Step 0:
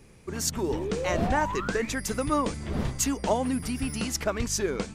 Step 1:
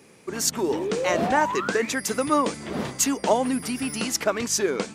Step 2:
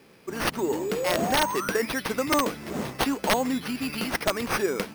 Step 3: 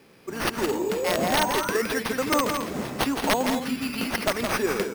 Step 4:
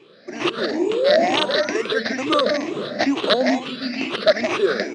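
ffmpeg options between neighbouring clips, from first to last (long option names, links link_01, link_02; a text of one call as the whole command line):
ffmpeg -i in.wav -af "highpass=230,volume=5dB" out.wav
ffmpeg -i in.wav -af "acrusher=samples=6:mix=1:aa=0.000001,aeval=exprs='(mod(3.76*val(0)+1,2)-1)/3.76':channel_layout=same,volume=-2dB" out.wav
ffmpeg -i in.wav -af "aecho=1:1:166.2|215.7:0.501|0.251" out.wav
ffmpeg -i in.wav -af "afftfilt=real='re*pow(10,14/40*sin(2*PI*(0.68*log(max(b,1)*sr/1024/100)/log(2)-(2.2)*(pts-256)/sr)))':imag='im*pow(10,14/40*sin(2*PI*(0.68*log(max(b,1)*sr/1024/100)/log(2)-(2.2)*(pts-256)/sr)))':win_size=1024:overlap=0.75,highpass=frequency=130:width=0.5412,highpass=frequency=130:width=1.3066,equalizer=frequency=170:width_type=q:width=4:gain=-7,equalizer=frequency=340:width_type=q:width=4:gain=6,equalizer=frequency=620:width_type=q:width=4:gain=9,equalizer=frequency=900:width_type=q:width=4:gain=-7,equalizer=frequency=1800:width_type=q:width=4:gain=4,equalizer=frequency=3900:width_type=q:width=4:gain=8,lowpass=frequency=5600:width=0.5412,lowpass=frequency=5600:width=1.3066" out.wav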